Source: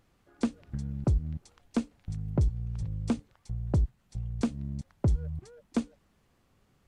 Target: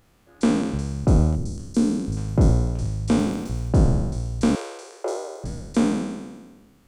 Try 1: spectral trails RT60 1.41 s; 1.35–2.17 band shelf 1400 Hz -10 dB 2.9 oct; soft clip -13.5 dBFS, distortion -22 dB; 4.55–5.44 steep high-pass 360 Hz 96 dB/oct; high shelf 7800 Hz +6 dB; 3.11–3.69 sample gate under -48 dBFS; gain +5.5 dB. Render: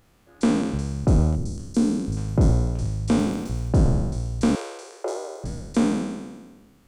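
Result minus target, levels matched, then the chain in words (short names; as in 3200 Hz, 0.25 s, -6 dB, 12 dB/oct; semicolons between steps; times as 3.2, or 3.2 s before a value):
soft clip: distortion +16 dB
spectral trails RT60 1.41 s; 1.35–2.17 band shelf 1400 Hz -10 dB 2.9 oct; soft clip -4.5 dBFS, distortion -38 dB; 4.55–5.44 steep high-pass 360 Hz 96 dB/oct; high shelf 7800 Hz +6 dB; 3.11–3.69 sample gate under -48 dBFS; gain +5.5 dB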